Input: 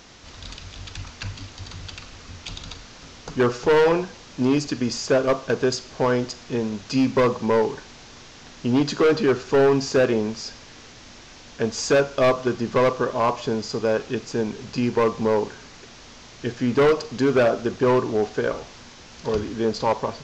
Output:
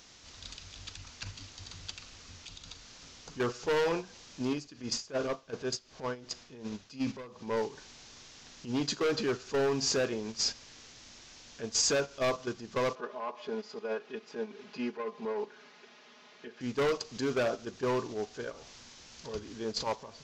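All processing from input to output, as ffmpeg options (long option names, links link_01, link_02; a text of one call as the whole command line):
ffmpeg -i in.wav -filter_complex "[0:a]asettb=1/sr,asplit=3[link_01][link_02][link_03];[link_01]atrim=end=4.534[link_04];[link_02]atrim=start=4.53:end=7.57,asetpts=PTS-STARTPTS,afade=type=in:duration=0.004:curve=qsin,afade=type=out:start_time=3.036:duration=0.004:curve=qsin,highshelf=frequency=7000:gain=-9.5,acompressor=threshold=-20dB:ratio=6:attack=3.2:release=140:knee=1:detection=peak,tremolo=f=2.7:d=0.77[link_05];[link_03]atrim=start=7.566[link_06];[link_04][link_05]acrossfade=duration=0.004:curve1=hsin:curve2=qsin[link_07];[link_07][link_06]acrossfade=duration=0.004:curve1=qsin:curve2=hsin,asettb=1/sr,asplit=3[link_08][link_09][link_10];[link_08]atrim=end=12.954[link_11];[link_09]atrim=start=12.95:end=16.61,asetpts=PTS-STARTPTS,afade=type=in:duration=0.004:curve=qsin,afade=type=out:start_time=3.656:duration=0.004:curve=qsin,highpass=290,lowpass=2600,aecho=1:1:4.8:0.81,atrim=end_sample=161406[link_12];[link_10]atrim=start=16.606[link_13];[link_11][link_12]acrossfade=duration=0.004:curve1=hsin:curve2=qsin[link_14];[link_14][link_13]acrossfade=duration=0.004:curve1=qsin:curve2=hsin,alimiter=limit=-24dB:level=0:latency=1:release=176,highshelf=frequency=3000:gain=10,agate=range=-11dB:threshold=-30dB:ratio=16:detection=peak,volume=-1.5dB" out.wav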